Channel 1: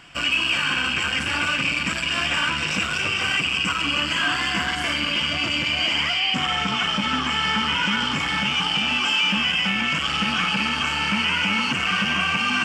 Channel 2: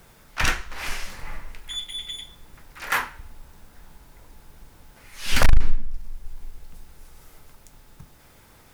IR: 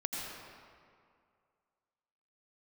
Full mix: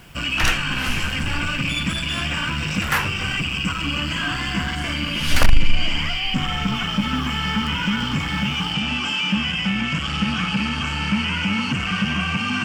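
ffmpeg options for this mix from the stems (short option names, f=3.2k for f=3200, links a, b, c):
-filter_complex "[0:a]bass=f=250:g=13,treble=f=4k:g=0,volume=-10dB[a];[1:a]volume=-5dB[b];[a][b]amix=inputs=2:normalize=0,acontrast=84"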